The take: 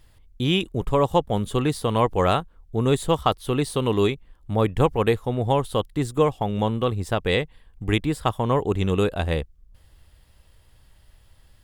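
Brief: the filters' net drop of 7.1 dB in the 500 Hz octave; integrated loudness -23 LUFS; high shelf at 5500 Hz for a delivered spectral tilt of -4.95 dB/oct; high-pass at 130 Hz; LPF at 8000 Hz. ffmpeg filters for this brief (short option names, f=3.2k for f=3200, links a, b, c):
-af "highpass=130,lowpass=8k,equalizer=f=500:t=o:g=-8.5,highshelf=f=5.5k:g=-7,volume=4.5dB"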